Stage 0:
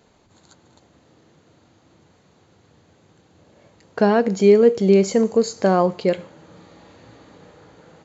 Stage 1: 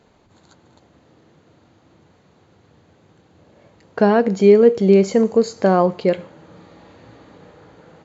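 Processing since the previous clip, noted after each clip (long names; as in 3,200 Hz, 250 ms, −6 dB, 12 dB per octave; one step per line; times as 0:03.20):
high-shelf EQ 6,000 Hz −11 dB
level +2 dB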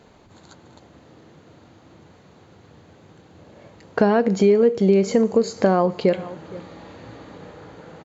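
slap from a distant wall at 80 metres, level −24 dB
downward compressor 3 to 1, threshold −20 dBFS, peak gain reduction 10.5 dB
level +4.5 dB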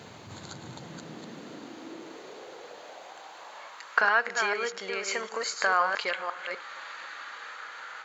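delay that plays each chunk backwards 252 ms, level −5 dB
high-pass filter sweep 110 Hz → 1,400 Hz, 0:00.45–0:04.09
one half of a high-frequency compander encoder only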